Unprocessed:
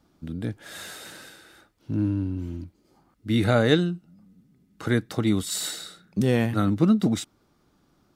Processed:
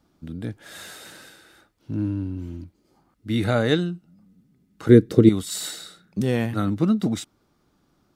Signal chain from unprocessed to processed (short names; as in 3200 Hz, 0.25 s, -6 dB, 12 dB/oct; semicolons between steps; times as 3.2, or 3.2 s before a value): 4.89–5.29 resonant low shelf 580 Hz +9.5 dB, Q 3; gain -1 dB